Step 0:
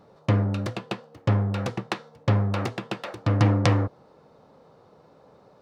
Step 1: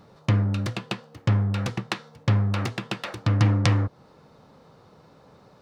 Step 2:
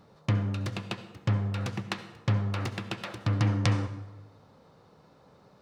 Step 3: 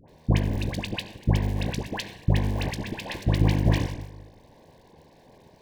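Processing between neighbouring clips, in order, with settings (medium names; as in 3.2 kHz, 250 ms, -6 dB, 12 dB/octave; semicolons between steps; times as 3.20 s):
peaking EQ 550 Hz -8 dB 2.1 oct; in parallel at +1 dB: compression, threshold -34 dBFS, peak gain reduction 16.5 dB
reverberation RT60 1.1 s, pre-delay 58 ms, DRR 11.5 dB; trim -5 dB
cycle switcher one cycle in 2, muted; Butterworth band-stop 1.3 kHz, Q 2.3; phase dispersion highs, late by 85 ms, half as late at 1.1 kHz; trim +7.5 dB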